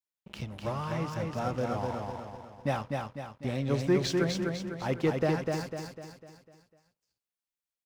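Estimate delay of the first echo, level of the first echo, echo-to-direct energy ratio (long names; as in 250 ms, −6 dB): 250 ms, −3.5 dB, −2.5 dB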